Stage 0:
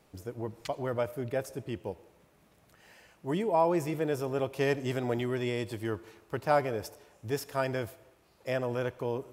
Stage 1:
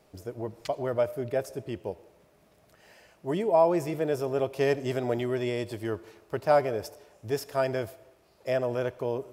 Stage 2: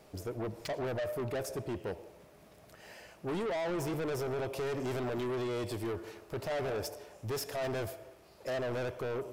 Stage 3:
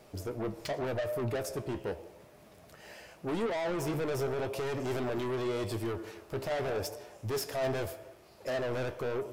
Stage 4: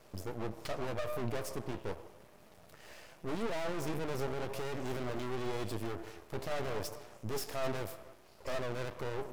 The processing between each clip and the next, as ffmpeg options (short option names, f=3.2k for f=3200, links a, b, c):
-af "equalizer=f=400:t=o:w=0.33:g=4,equalizer=f=630:t=o:w=0.33:g=7,equalizer=f=5k:t=o:w=0.33:g=3"
-af "alimiter=limit=-21dB:level=0:latency=1:release=46,asoftclip=type=tanh:threshold=-36dB,volume=4dB"
-af "flanger=delay=8.2:depth=7:regen=62:speed=0.85:shape=sinusoidal,volume=6dB"
-af "aeval=exprs='max(val(0),0)':c=same,volume=1dB"